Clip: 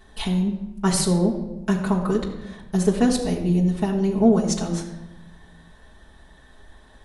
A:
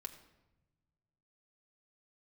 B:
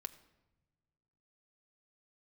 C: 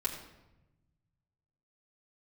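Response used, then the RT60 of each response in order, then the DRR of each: C; 1.0 s, non-exponential decay, 1.0 s; 3.0, 8.5, −5.0 decibels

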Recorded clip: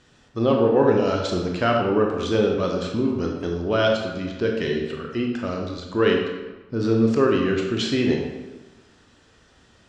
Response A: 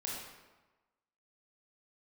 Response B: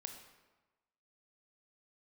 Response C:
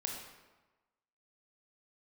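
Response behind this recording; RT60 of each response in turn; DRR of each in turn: C; 1.2, 1.2, 1.2 seconds; −4.0, 5.0, 0.5 decibels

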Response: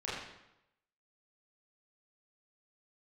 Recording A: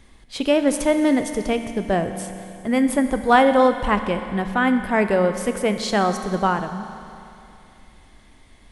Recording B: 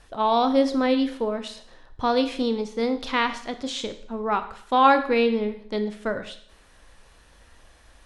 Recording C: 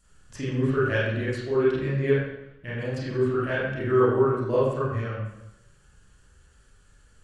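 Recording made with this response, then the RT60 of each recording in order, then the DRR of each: C; 2.8, 0.60, 0.85 seconds; 8.0, 9.0, −9.0 decibels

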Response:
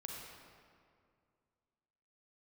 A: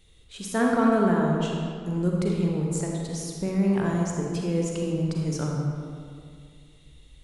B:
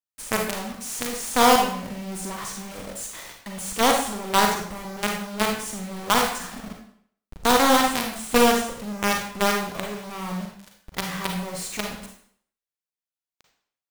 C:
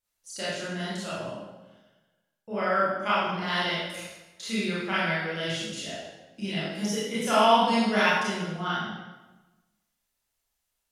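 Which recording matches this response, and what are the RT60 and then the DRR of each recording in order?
A; 2.2, 0.60, 1.1 seconds; −1.5, 1.0, −10.0 decibels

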